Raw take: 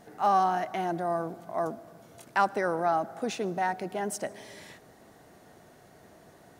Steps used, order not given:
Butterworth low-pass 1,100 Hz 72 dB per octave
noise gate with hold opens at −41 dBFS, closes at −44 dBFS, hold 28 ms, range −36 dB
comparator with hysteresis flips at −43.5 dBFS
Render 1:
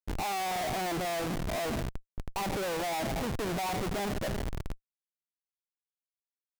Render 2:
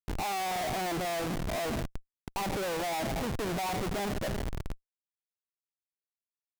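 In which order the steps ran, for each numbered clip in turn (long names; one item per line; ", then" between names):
Butterworth low-pass, then comparator with hysteresis, then noise gate with hold
noise gate with hold, then Butterworth low-pass, then comparator with hysteresis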